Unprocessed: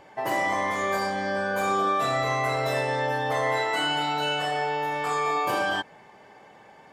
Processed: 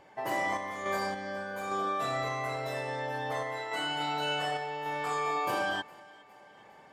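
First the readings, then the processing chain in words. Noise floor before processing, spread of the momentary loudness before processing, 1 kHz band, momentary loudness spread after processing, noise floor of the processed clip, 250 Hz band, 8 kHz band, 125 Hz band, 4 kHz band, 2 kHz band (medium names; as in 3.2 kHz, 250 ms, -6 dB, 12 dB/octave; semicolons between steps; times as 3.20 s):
-52 dBFS, 3 LU, -7.0 dB, 5 LU, -55 dBFS, -7.0 dB, -7.0 dB, -7.5 dB, -6.5 dB, -7.0 dB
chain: random-step tremolo; thinning echo 409 ms, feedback 55%, high-pass 230 Hz, level -22.5 dB; trim -4.5 dB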